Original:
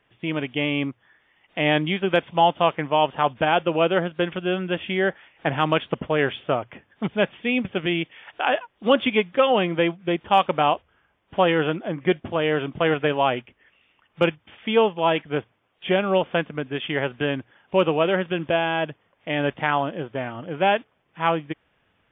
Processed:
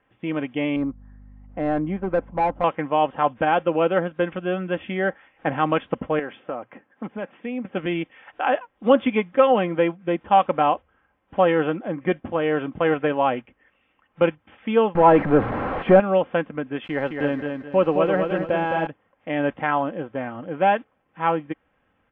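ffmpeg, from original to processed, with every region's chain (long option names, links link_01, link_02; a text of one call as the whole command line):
ffmpeg -i in.wav -filter_complex "[0:a]asettb=1/sr,asplit=3[link_01][link_02][link_03];[link_01]atrim=end=0.764[link_04];[link_02]atrim=start=0.76:end=2.64,asetpts=PTS-STARTPTS,afade=type=in:duration=0.004:curve=qsin,afade=type=out:start_time=1.876:duration=0.004:curve=qsin,lowpass=1100,asoftclip=type=hard:threshold=-17.5dB,aeval=exprs='val(0)+0.00562*(sin(2*PI*50*n/s)+sin(2*PI*2*50*n/s)/2+sin(2*PI*3*50*n/s)/3+sin(2*PI*4*50*n/s)/4+sin(2*PI*5*50*n/s)/5)':channel_layout=same[link_05];[link_03]atrim=start=2.636[link_06];[link_04][link_05]acrossfade=duration=0.004:curve1=hsin:curve2=qsin[link_07];[link_07][link_06]acrossfade=duration=0.004:curve1=qsin:curve2=hsin,asettb=1/sr,asplit=3[link_08][link_09][link_10];[link_08]atrim=end=6.194[link_11];[link_09]atrim=start=6.19:end=7.74,asetpts=PTS-STARTPTS,afade=type=in:duration=0.004:curve=qsin,afade=type=out:start_time=1.546:duration=0.004:curve=qsin,highpass=190,lowpass=2700,acompressor=threshold=-28dB:ratio=2.5:attack=3.2:release=140:knee=1:detection=peak[link_12];[link_10]atrim=start=7.736[link_13];[link_11][link_12]acrossfade=duration=0.004:curve1=hsin:curve2=qsin[link_14];[link_14][link_13]acrossfade=duration=0.004:curve1=qsin:curve2=hsin,asettb=1/sr,asplit=3[link_15][link_16][link_17];[link_15]atrim=end=14.954[link_18];[link_16]atrim=start=14.95:end=16,asetpts=PTS-STARTPTS,afade=type=in:duration=0.004:curve=qsin,afade=type=out:start_time=1.046:duration=0.004:curve=qsin,aeval=exprs='val(0)+0.5*0.0596*sgn(val(0))':channel_layout=same,lowpass=1500,acontrast=72[link_19];[link_17]atrim=start=15.996[link_20];[link_18][link_19]acrossfade=duration=0.004:curve1=hsin:curve2=qsin[link_21];[link_21][link_20]acrossfade=duration=0.004:curve1=qsin:curve2=hsin,asettb=1/sr,asplit=3[link_22][link_23][link_24];[link_22]atrim=end=16.844[link_25];[link_23]atrim=start=16.84:end=18.87,asetpts=PTS-STARTPTS,afade=type=in:duration=0.004:curve=qsin,afade=type=out:start_time=2.026:duration=0.004:curve=qsin,highshelf=frequency=3200:gain=-6.5,aeval=exprs='val(0)*gte(abs(val(0)),0.0141)':channel_layout=same,aecho=1:1:214|428|642|856:0.562|0.18|0.0576|0.0184,atrim=end_sample=89523[link_26];[link_24]atrim=start=18.866[link_27];[link_25][link_26]acrossfade=duration=0.004:curve1=hsin:curve2=qsin[link_28];[link_28][link_27]acrossfade=duration=0.004:curve1=qsin:curve2=hsin,lowpass=1900,aecho=1:1:3.8:0.38" out.wav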